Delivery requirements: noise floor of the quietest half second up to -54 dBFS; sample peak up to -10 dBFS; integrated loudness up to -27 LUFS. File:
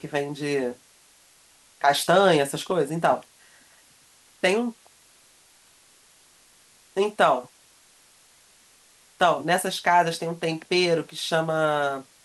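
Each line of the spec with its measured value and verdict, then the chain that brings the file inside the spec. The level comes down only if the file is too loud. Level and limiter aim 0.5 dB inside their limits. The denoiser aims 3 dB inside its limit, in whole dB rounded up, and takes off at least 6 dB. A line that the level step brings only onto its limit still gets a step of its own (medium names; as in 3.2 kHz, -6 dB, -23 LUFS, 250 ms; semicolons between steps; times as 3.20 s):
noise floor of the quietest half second -57 dBFS: pass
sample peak -6.5 dBFS: fail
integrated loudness -23.5 LUFS: fail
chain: trim -4 dB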